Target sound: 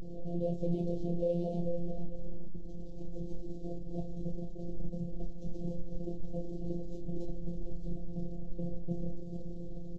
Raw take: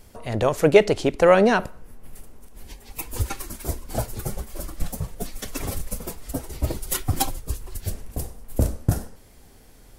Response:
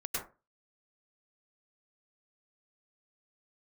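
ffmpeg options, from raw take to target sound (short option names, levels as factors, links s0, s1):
-filter_complex "[0:a]aeval=exprs='val(0)+0.5*0.112*sgn(val(0))':c=same,asplit=2[s0][s1];[s1]adelay=442,lowpass=f=1000:p=1,volume=0.316,asplit=2[s2][s3];[s3]adelay=442,lowpass=f=1000:p=1,volume=0.16[s4];[s0][s2][s4]amix=inputs=3:normalize=0,aresample=16000,acrusher=bits=4:mix=0:aa=0.000001,aresample=44100,equalizer=f=2200:t=o:w=2:g=-13,volume=11.2,asoftclip=hard,volume=0.0891,bandreject=f=282.9:t=h:w=4,bandreject=f=565.8:t=h:w=4,bandreject=f=848.7:t=h:w=4,bandreject=f=1131.6:t=h:w=4,bandreject=f=1414.5:t=h:w=4,bandreject=f=1697.4:t=h:w=4,bandreject=f=1980.3:t=h:w=4,bandreject=f=2263.2:t=h:w=4,bandreject=f=2546.1:t=h:w=4,bandreject=f=2829:t=h:w=4,bandreject=f=3111.9:t=h:w=4,bandreject=f=3394.8:t=h:w=4,bandreject=f=3677.7:t=h:w=4,bandreject=f=3960.6:t=h:w=4,bandreject=f=4243.5:t=h:w=4,bandreject=f=4526.4:t=h:w=4,bandreject=f=4809.3:t=h:w=4,bandreject=f=5092.2:t=h:w=4,bandreject=f=5375.1:t=h:w=4,bandreject=f=5658:t=h:w=4,bandreject=f=5940.9:t=h:w=4,bandreject=f=6223.8:t=h:w=4,bandreject=f=6506.7:t=h:w=4,bandreject=f=6789.6:t=h:w=4,bandreject=f=7072.5:t=h:w=4,bandreject=f=7355.4:t=h:w=4,bandreject=f=7638.3:t=h:w=4,bandreject=f=7921.2:t=h:w=4,bandreject=f=8204.1:t=h:w=4,aeval=exprs='0.422*(cos(1*acos(clip(val(0)/0.422,-1,1)))-cos(1*PI/2))+0.133*(cos(3*acos(clip(val(0)/0.422,-1,1)))-cos(3*PI/2))+0.00237*(cos(7*acos(clip(val(0)/0.422,-1,1)))-cos(7*PI/2))':c=same,aemphasis=mode=production:type=50fm,asplit=2[s5][s6];[s6]adelay=28,volume=0.501[s7];[s5][s7]amix=inputs=2:normalize=0,adynamicsmooth=sensitivity=2:basefreq=770,afftfilt=real='hypot(re,im)*cos(PI*b)':imag='0':win_size=1024:overlap=0.75,asuperstop=centerf=1400:order=8:qfactor=0.57,volume=7.08"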